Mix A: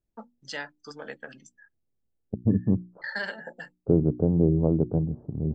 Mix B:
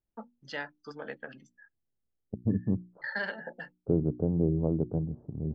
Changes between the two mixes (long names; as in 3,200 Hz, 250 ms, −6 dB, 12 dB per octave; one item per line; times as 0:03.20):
first voice: add high-frequency loss of the air 190 metres
second voice −5.5 dB